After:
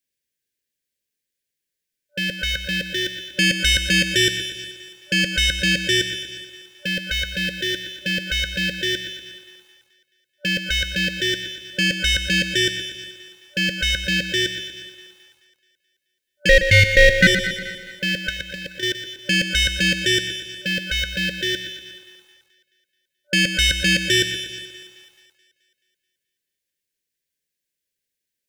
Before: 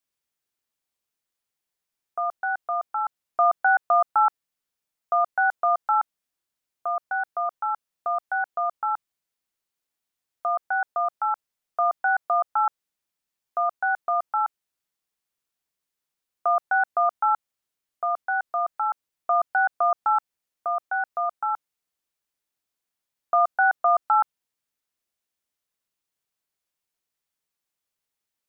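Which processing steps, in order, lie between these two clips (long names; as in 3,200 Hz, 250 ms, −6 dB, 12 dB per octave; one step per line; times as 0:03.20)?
0:16.49–0:17.27: ring modulation 670 Hz
leveller curve on the samples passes 3
0:18.29–0:18.83: compressor whose output falls as the input rises −24 dBFS, ratio −0.5
brick-wall band-stop 590–1,500 Hz
echo with a time of its own for lows and highs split 470 Hz, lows 134 ms, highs 215 ms, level −15.5 dB
feedback echo at a low word length 120 ms, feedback 55%, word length 10 bits, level −10 dB
level +8.5 dB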